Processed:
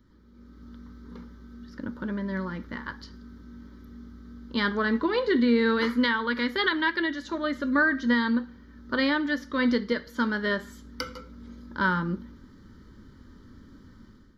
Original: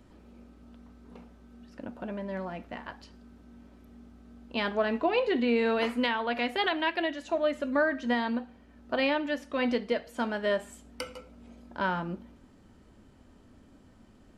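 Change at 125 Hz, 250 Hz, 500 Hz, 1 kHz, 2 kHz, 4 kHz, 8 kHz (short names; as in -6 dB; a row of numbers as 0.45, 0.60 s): +7.0 dB, +6.0 dB, -1.0 dB, +1.0 dB, +6.0 dB, +3.0 dB, n/a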